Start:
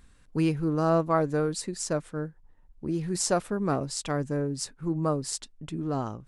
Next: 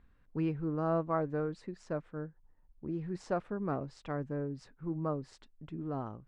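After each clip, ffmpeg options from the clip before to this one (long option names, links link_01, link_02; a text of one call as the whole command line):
ffmpeg -i in.wav -af "lowpass=2100,volume=-7.5dB" out.wav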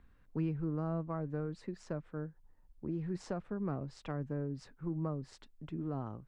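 ffmpeg -i in.wav -filter_complex "[0:a]acrossover=split=220[link_01][link_02];[link_02]acompressor=threshold=-40dB:ratio=5[link_03];[link_01][link_03]amix=inputs=2:normalize=0,volume=1.5dB" out.wav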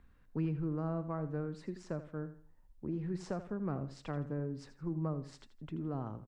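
ffmpeg -i in.wav -af "aecho=1:1:82|164|246:0.224|0.0694|0.0215" out.wav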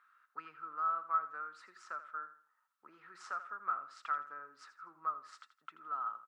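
ffmpeg -i in.wav -af "highpass=frequency=1300:width_type=q:width=15,volume=-3dB" out.wav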